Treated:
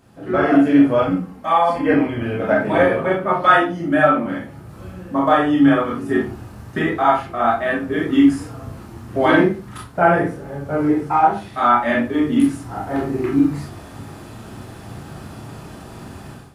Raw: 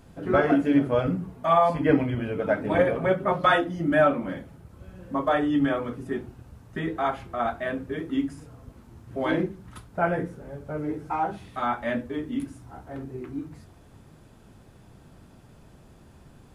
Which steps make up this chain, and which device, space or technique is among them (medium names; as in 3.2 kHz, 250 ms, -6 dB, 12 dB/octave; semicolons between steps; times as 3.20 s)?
far laptop microphone (reverberation RT60 0.30 s, pre-delay 23 ms, DRR -2.5 dB; high-pass 120 Hz 6 dB/octave; level rider gain up to 15.5 dB); 1.11–1.94 s: comb 3.8 ms, depth 63%; trim -1 dB